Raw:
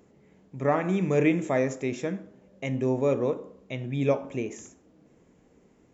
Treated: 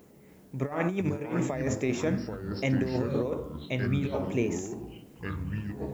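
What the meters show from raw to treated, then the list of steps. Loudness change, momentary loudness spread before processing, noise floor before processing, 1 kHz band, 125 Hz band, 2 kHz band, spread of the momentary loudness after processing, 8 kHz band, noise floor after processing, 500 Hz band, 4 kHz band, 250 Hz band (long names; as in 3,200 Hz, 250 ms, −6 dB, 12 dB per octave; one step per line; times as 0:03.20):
−3.0 dB, 13 LU, −61 dBFS, −5.0 dB, +1.0 dB, −1.0 dB, 9 LU, can't be measured, −55 dBFS, −4.5 dB, +2.5 dB, −1.0 dB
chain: compressor whose output falls as the input rises −28 dBFS, ratio −0.5
background noise blue −69 dBFS
delay with pitch and tempo change per echo 286 ms, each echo −5 semitones, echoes 3, each echo −6 dB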